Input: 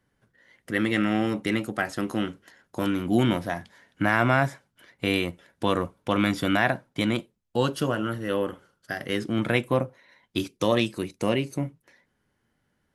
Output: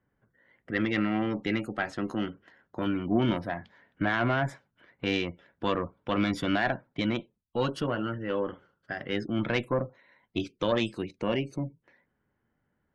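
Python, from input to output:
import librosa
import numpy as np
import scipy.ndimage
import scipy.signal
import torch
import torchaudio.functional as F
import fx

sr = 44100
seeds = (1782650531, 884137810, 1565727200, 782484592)

y = fx.spec_gate(x, sr, threshold_db=-30, keep='strong')
y = fx.tube_stage(y, sr, drive_db=11.0, bias=0.6)
y = fx.env_lowpass(y, sr, base_hz=1900.0, full_db=-22.5)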